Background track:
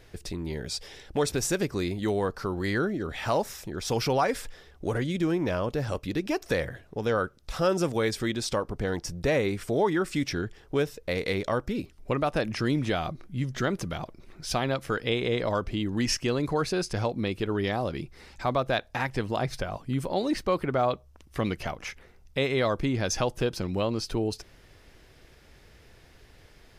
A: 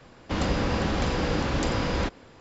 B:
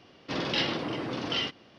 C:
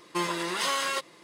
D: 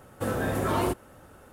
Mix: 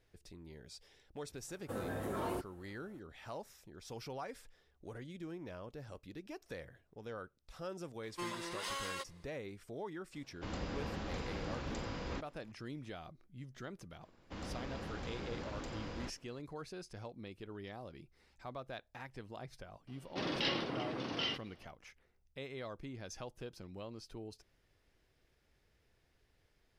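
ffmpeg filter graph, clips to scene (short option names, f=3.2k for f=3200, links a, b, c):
-filter_complex "[1:a]asplit=2[a][b];[0:a]volume=-19.5dB[c];[4:a]equalizer=f=510:w=0.56:g=3[d];[b]asoftclip=type=tanh:threshold=-19dB[e];[d]atrim=end=1.52,asetpts=PTS-STARTPTS,volume=-14.5dB,afade=t=in:d=0.004:c=hsin,afade=t=out:st=1.516:d=0.004:c=hsin,adelay=1480[f];[3:a]atrim=end=1.23,asetpts=PTS-STARTPTS,volume=-13dB,afade=t=in:d=0.004:c=hsin,afade=t=out:st=1.226:d=0.004:c=hsin,adelay=8030[g];[a]atrim=end=2.4,asetpts=PTS-STARTPTS,volume=-15.5dB,afade=t=in:d=0.004:c=hsin,afade=t=out:st=2.396:d=0.004:c=hsin,adelay=10120[h];[e]atrim=end=2.4,asetpts=PTS-STARTPTS,volume=-17dB,afade=t=in:d=0.004:c=hsin,afade=t=out:st=2.396:d=0.004:c=hsin,adelay=14010[i];[2:a]atrim=end=1.78,asetpts=PTS-STARTPTS,volume=-7dB,afade=t=in:d=0.004:c=hsin,afade=t=out:st=1.776:d=0.004:c=hsin,adelay=19870[j];[c][f][g][h][i][j]amix=inputs=6:normalize=0"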